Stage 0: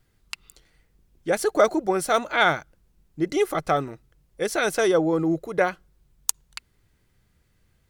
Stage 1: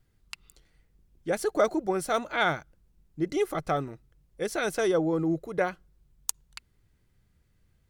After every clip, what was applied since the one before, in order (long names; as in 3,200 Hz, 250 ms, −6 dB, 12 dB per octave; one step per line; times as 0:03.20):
low-shelf EQ 290 Hz +5.5 dB
level −6.5 dB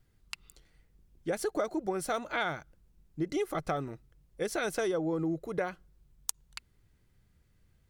downward compressor 6 to 1, threshold −28 dBFS, peak gain reduction 10 dB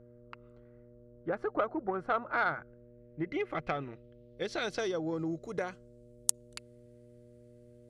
low-pass filter sweep 1,300 Hz → 9,600 Hz, 0:02.31–0:06.18
hum with harmonics 120 Hz, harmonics 5, −53 dBFS −1 dB per octave
harmonic generator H 7 −24 dB, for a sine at −6 dBFS
level +1.5 dB